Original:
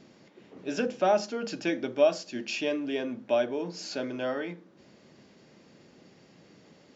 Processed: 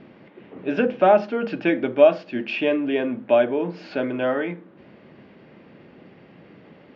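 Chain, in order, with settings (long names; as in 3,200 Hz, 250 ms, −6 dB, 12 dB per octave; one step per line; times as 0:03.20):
low-pass filter 2,900 Hz 24 dB per octave
level +8.5 dB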